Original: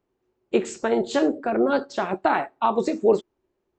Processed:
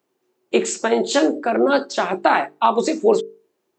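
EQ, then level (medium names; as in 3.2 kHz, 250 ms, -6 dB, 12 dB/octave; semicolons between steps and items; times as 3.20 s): high-pass 190 Hz 12 dB/octave; treble shelf 3.2 kHz +9 dB; hum notches 50/100/150/200/250/300/350/400/450 Hz; +4.5 dB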